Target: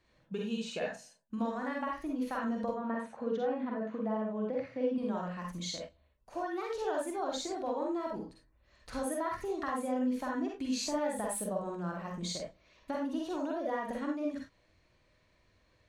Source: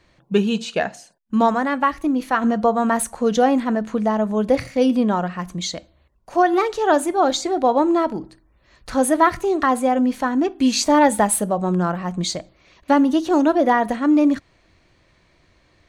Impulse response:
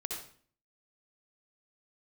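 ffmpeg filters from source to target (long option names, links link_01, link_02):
-filter_complex "[0:a]acompressor=threshold=-20dB:ratio=6,asettb=1/sr,asplit=3[link_01][link_02][link_03];[link_01]atrim=end=2.744[link_04];[link_02]atrim=start=2.74:end=4.98,asetpts=PTS-STARTPTS,afade=type=in:duration=0.004:curve=qsin,afade=type=out:start_time=2.236:duration=0.004:curve=qsin,highpass=150,lowpass=2500[link_05];[link_03]atrim=start=4.976[link_06];[link_04][link_05]acrossfade=duration=0.004:curve1=hsin:curve2=qsin[link_07];[link_07][link_06]acrossfade=duration=0.004:curve1=qsin:curve2=hsin[link_08];[1:a]atrim=start_sample=2205,afade=type=out:start_time=0.2:duration=0.01,atrim=end_sample=9261,asetrate=61740,aresample=44100[link_09];[link_08][link_09]afir=irnorm=-1:irlink=0,volume=-9dB"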